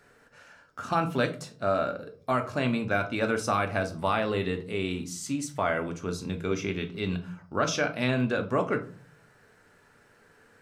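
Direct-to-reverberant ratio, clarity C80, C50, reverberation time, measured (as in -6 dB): 5.0 dB, 19.5 dB, 13.5 dB, 0.40 s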